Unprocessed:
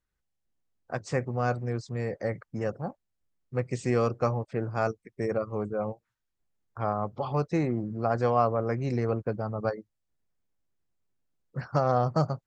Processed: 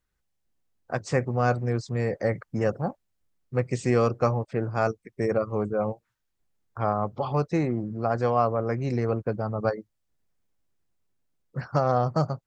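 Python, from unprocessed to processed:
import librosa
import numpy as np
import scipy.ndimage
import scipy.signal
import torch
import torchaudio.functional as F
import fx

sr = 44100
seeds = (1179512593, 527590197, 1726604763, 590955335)

y = fx.rider(x, sr, range_db=10, speed_s=2.0)
y = F.gain(torch.from_numpy(y), 2.5).numpy()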